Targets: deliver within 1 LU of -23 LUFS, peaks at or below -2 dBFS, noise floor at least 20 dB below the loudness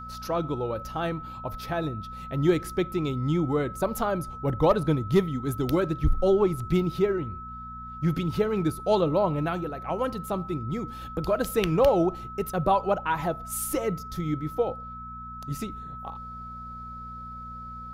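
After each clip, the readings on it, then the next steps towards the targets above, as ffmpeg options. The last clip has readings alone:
hum 60 Hz; harmonics up to 240 Hz; hum level -42 dBFS; steady tone 1300 Hz; tone level -38 dBFS; loudness -27.0 LUFS; peak -11.0 dBFS; loudness target -23.0 LUFS
-> -af "bandreject=f=60:t=h:w=4,bandreject=f=120:t=h:w=4,bandreject=f=180:t=h:w=4,bandreject=f=240:t=h:w=4"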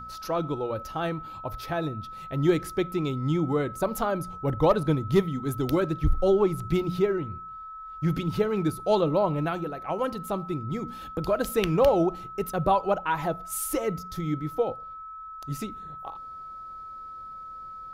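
hum none; steady tone 1300 Hz; tone level -38 dBFS
-> -af "bandreject=f=1.3k:w=30"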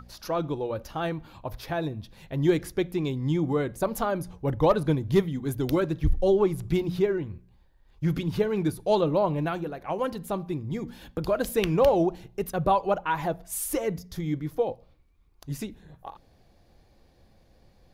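steady tone none; loudness -27.5 LUFS; peak -11.0 dBFS; loudness target -23.0 LUFS
-> -af "volume=4.5dB"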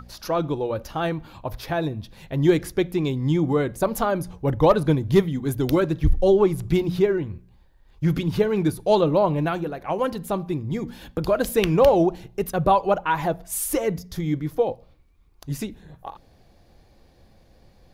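loudness -23.0 LUFS; peak -6.5 dBFS; noise floor -56 dBFS

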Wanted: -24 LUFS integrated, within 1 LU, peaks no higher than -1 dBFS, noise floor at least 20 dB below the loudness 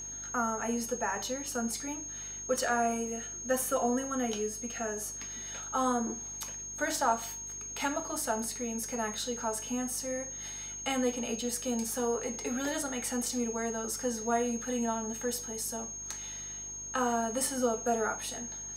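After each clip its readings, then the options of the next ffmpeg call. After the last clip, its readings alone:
hum 50 Hz; harmonics up to 400 Hz; hum level -52 dBFS; steady tone 6500 Hz; tone level -39 dBFS; loudness -33.0 LUFS; peak -15.5 dBFS; loudness target -24.0 LUFS
-> -af "bandreject=f=50:t=h:w=4,bandreject=f=100:t=h:w=4,bandreject=f=150:t=h:w=4,bandreject=f=200:t=h:w=4,bandreject=f=250:t=h:w=4,bandreject=f=300:t=h:w=4,bandreject=f=350:t=h:w=4,bandreject=f=400:t=h:w=4"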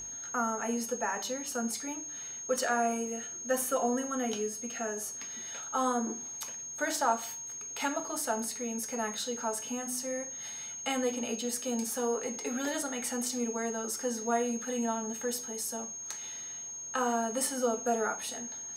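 hum none; steady tone 6500 Hz; tone level -39 dBFS
-> -af "bandreject=f=6.5k:w=30"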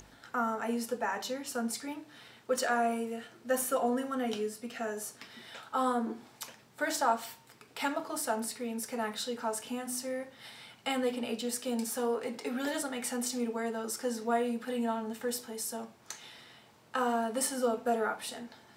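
steady tone none; loudness -34.0 LUFS; peak -16.0 dBFS; loudness target -24.0 LUFS
-> -af "volume=10dB"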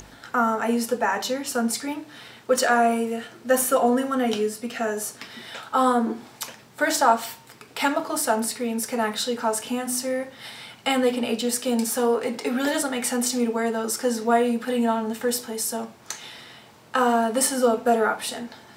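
loudness -24.0 LUFS; peak -6.0 dBFS; noise floor -50 dBFS

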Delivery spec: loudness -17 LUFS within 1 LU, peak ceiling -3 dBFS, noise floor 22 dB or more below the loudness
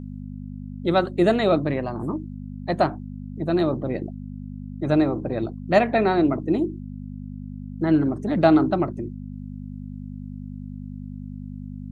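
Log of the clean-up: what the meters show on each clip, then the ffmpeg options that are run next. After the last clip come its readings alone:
hum 50 Hz; harmonics up to 250 Hz; hum level -32 dBFS; loudness -22.5 LUFS; peak -4.5 dBFS; loudness target -17.0 LUFS
-> -af "bandreject=f=50:t=h:w=4,bandreject=f=100:t=h:w=4,bandreject=f=150:t=h:w=4,bandreject=f=200:t=h:w=4,bandreject=f=250:t=h:w=4"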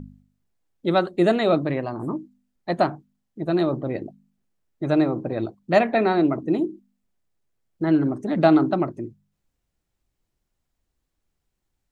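hum none; loudness -22.5 LUFS; peak -4.0 dBFS; loudness target -17.0 LUFS
-> -af "volume=5.5dB,alimiter=limit=-3dB:level=0:latency=1"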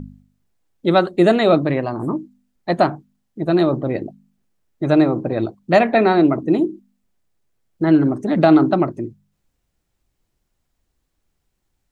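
loudness -17.5 LUFS; peak -3.0 dBFS; noise floor -73 dBFS

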